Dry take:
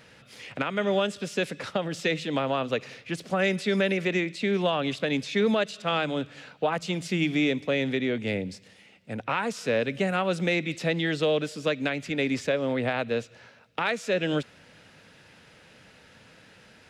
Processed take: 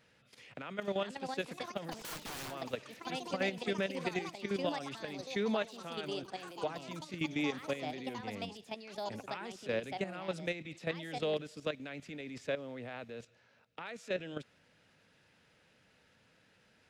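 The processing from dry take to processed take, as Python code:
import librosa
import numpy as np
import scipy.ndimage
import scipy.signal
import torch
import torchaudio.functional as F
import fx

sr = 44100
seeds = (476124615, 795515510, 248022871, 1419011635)

y = fx.overflow_wrap(x, sr, gain_db=27.5, at=(1.91, 2.5), fade=0.02)
y = fx.level_steps(y, sr, step_db=12)
y = fx.echo_pitch(y, sr, ms=570, semitones=5, count=3, db_per_echo=-6.0)
y = y * 10.0 ** (-8.0 / 20.0)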